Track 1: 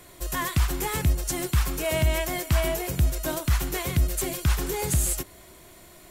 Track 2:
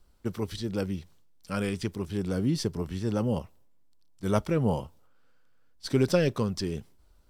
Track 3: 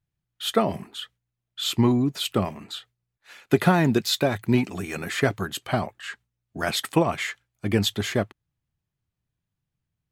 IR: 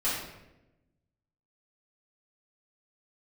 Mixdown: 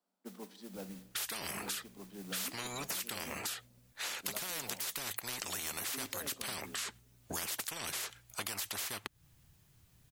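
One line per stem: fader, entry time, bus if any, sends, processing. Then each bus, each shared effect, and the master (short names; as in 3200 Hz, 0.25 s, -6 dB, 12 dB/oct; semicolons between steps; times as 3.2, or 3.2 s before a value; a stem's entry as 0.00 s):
off
-9.5 dB, 0.00 s, send -20.5 dB, rippled Chebyshev high-pass 180 Hz, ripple 9 dB; modulation noise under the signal 10 dB
+0.5 dB, 0.75 s, no send, high shelf 4400 Hz +8.5 dB; spectral compressor 10:1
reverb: on, RT60 0.95 s, pre-delay 3 ms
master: compressor 5:1, threshold -37 dBFS, peak gain reduction 14.5 dB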